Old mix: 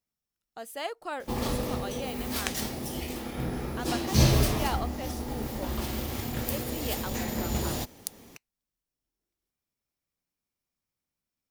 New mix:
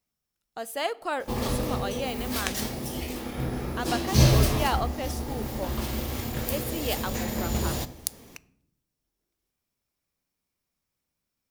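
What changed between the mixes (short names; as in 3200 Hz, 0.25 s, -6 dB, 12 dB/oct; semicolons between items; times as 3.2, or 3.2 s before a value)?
speech +5.0 dB; reverb: on, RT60 0.70 s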